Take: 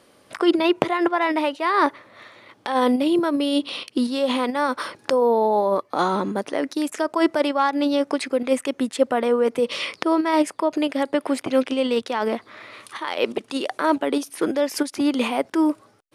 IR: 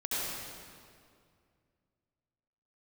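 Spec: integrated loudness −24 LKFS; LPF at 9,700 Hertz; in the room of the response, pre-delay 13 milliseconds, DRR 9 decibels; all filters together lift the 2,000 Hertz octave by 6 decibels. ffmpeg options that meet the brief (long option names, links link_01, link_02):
-filter_complex "[0:a]lowpass=9700,equalizer=frequency=2000:width_type=o:gain=7.5,asplit=2[link_01][link_02];[1:a]atrim=start_sample=2205,adelay=13[link_03];[link_02][link_03]afir=irnorm=-1:irlink=0,volume=-16dB[link_04];[link_01][link_04]amix=inputs=2:normalize=0,volume=-3.5dB"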